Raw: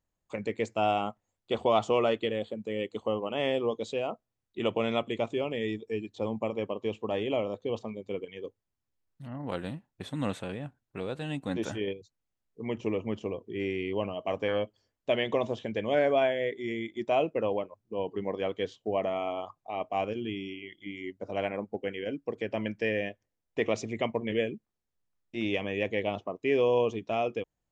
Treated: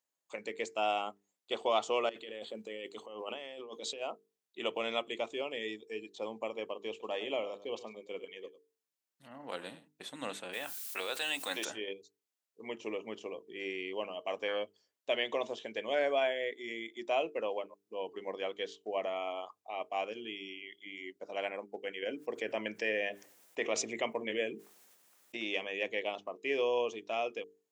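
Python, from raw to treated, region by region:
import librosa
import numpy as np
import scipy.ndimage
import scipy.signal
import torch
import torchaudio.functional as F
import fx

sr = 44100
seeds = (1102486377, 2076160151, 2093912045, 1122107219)

y = fx.chain(x, sr, fx.notch(hz=6900.0, q=25.0),
    fx.over_compress(threshold_db=-37.0, ratio=-1.0), at=(2.09, 4.02))
y = fx.chain(y, sr, fx.highpass(hz=44.0, slope=12),
    fx.echo_single(ms=100, db=-14.5), at=(6.9, 9.88))
y = fx.highpass(y, sr, hz=1300.0, slope=6, at=(10.52, 11.64), fade=0.02)
y = fx.dmg_noise_colour(y, sr, seeds[0], colour='blue', level_db=-69.0, at=(10.52, 11.64), fade=0.02)
y = fx.env_flatten(y, sr, amount_pct=50, at=(10.52, 11.64), fade=0.02)
y = fx.chain(y, sr, fx.peak_eq(hz=4400.0, db=-4.5, octaves=1.2),
    fx.env_flatten(amount_pct=50), at=(22.02, 25.37))
y = scipy.signal.sosfilt(scipy.signal.butter(2, 350.0, 'highpass', fs=sr, output='sos'), y)
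y = fx.high_shelf(y, sr, hz=2400.0, db=8.5)
y = fx.hum_notches(y, sr, base_hz=50, count=9)
y = y * 10.0 ** (-5.5 / 20.0)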